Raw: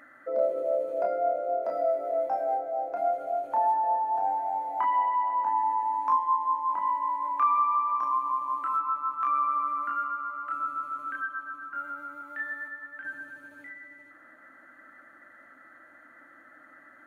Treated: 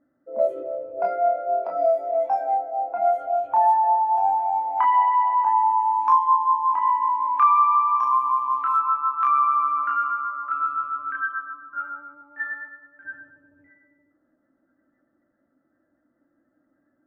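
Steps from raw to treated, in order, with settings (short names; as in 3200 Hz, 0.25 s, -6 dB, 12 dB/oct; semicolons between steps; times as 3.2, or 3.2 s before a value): spectral noise reduction 10 dB; low-pass opened by the level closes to 340 Hz, open at -24 dBFS; gain +7 dB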